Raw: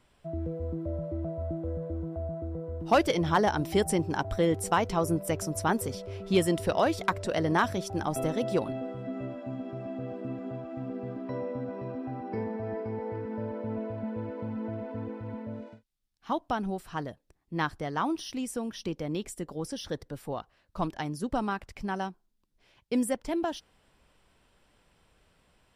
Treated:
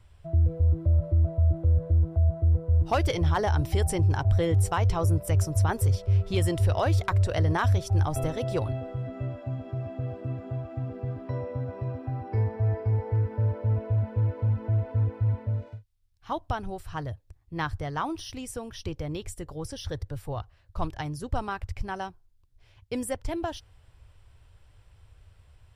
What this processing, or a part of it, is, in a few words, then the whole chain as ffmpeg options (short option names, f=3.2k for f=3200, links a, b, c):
car stereo with a boomy subwoofer: -af "lowshelf=f=140:t=q:w=3:g=12.5,alimiter=limit=-16dB:level=0:latency=1:release=32"